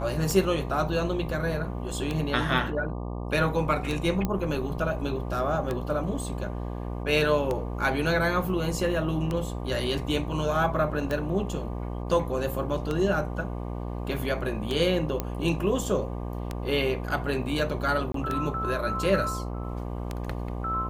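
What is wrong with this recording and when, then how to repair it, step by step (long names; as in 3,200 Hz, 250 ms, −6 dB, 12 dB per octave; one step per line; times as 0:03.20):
mains buzz 60 Hz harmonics 20 −33 dBFS
scratch tick 33 1/3 rpm
0:04.25: click −14 dBFS
0:15.20: click −13 dBFS
0:18.12–0:18.14: drop-out 23 ms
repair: click removal
hum removal 60 Hz, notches 20
repair the gap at 0:18.12, 23 ms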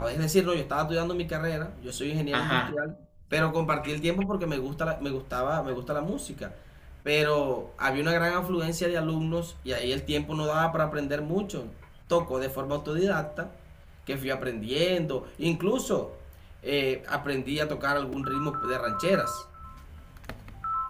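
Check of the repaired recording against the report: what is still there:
none of them is left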